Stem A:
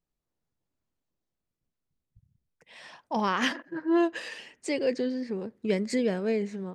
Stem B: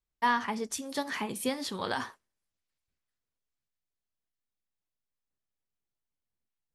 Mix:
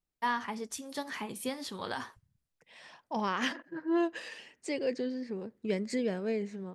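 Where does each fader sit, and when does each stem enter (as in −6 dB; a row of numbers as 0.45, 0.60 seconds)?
−5.0, −4.5 decibels; 0.00, 0.00 seconds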